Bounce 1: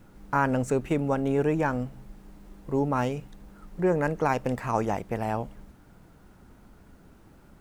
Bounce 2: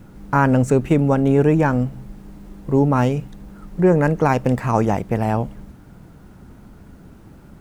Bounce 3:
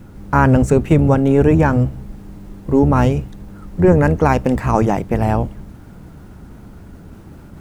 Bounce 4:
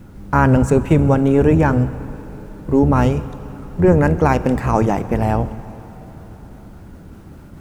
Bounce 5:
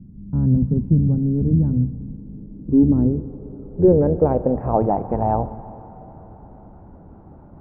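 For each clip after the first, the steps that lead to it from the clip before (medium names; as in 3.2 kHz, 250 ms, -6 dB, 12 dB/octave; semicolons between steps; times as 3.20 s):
peaking EQ 130 Hz +6.5 dB 2.7 oct; trim +6 dB
octave divider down 1 oct, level -4 dB; reverse; upward compressor, threshold -35 dBFS; reverse; trim +2.5 dB
plate-style reverb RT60 4.1 s, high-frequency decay 0.85×, DRR 14 dB; trim -1 dB
low-pass sweep 200 Hz -> 830 Hz, 2.14–5.16 s; decimation joined by straight lines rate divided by 2×; trim -5.5 dB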